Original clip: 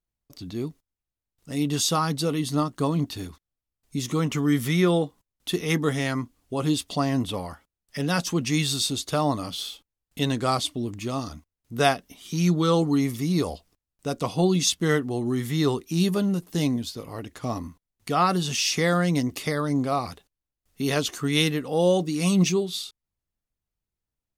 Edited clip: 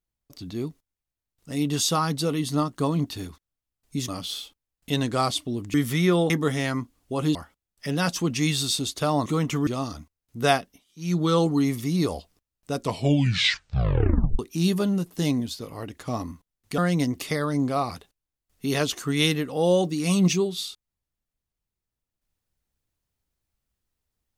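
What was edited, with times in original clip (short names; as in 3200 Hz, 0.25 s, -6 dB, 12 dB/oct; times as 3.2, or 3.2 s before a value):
4.08–4.49 swap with 9.37–11.03
5.05–5.71 cut
6.76–7.46 cut
11.95–12.58 dip -22.5 dB, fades 0.26 s
14.15 tape stop 1.60 s
18.14–18.94 cut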